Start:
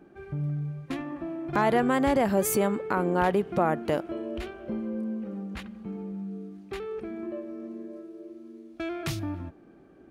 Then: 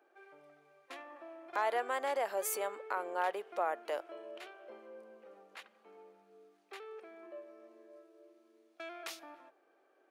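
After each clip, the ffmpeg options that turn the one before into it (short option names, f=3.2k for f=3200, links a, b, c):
-af "highpass=f=500:w=0.5412,highpass=f=500:w=1.3066,volume=-7.5dB"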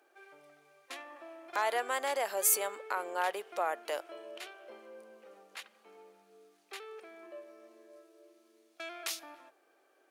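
-af "equalizer=f=11k:t=o:w=3:g=11.5"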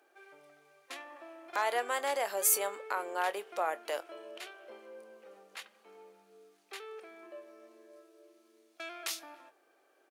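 -filter_complex "[0:a]asplit=2[a][b];[b]adelay=25,volume=-14dB[c];[a][c]amix=inputs=2:normalize=0"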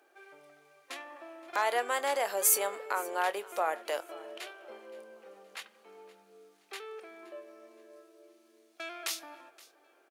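-af "aecho=1:1:521|1042|1563:0.0841|0.032|0.0121,volume=2dB"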